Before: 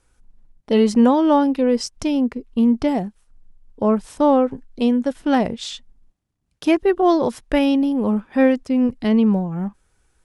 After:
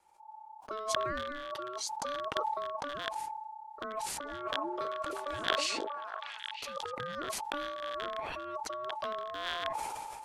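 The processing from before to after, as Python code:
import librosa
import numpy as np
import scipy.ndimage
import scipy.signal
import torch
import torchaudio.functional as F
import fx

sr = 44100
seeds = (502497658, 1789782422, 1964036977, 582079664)

y = fx.rattle_buzz(x, sr, strikes_db=-30.0, level_db=-8.0)
y = fx.over_compress(y, sr, threshold_db=-25.0, ratio=-1.0)
y = fx.rotary_switch(y, sr, hz=0.75, then_hz=6.0, switch_at_s=3.16)
y = y * np.sin(2.0 * np.pi * 870.0 * np.arange(len(y)) / sr)
y = fx.echo_stepped(y, sr, ms=319, hz=370.0, octaves=1.4, feedback_pct=70, wet_db=-1.5, at=(4.24, 6.89), fade=0.02)
y = fx.sustainer(y, sr, db_per_s=24.0)
y = y * 10.0 ** (-9.0 / 20.0)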